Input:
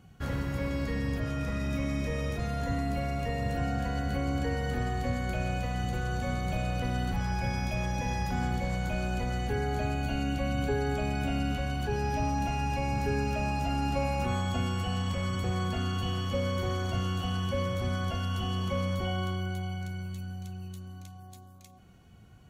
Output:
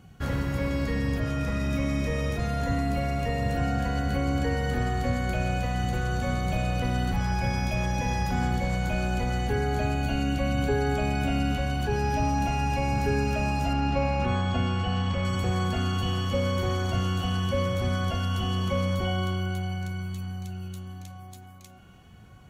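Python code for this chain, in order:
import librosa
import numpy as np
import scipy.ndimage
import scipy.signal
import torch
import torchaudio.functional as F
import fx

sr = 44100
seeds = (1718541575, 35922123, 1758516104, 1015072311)

p1 = fx.lowpass(x, sr, hz=4500.0, slope=12, at=(13.73, 15.25))
p2 = p1 + fx.echo_wet_bandpass(p1, sr, ms=1196, feedback_pct=57, hz=1300.0, wet_db=-18.5, dry=0)
y = p2 * 10.0 ** (4.0 / 20.0)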